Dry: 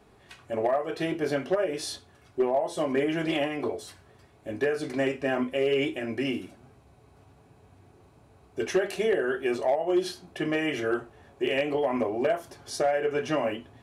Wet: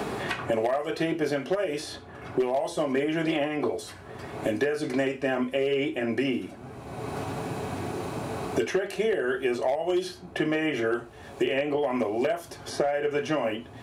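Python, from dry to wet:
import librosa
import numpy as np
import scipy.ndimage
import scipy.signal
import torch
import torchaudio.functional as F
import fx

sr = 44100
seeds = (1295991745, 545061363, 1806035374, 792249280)

y = fx.band_squash(x, sr, depth_pct=100)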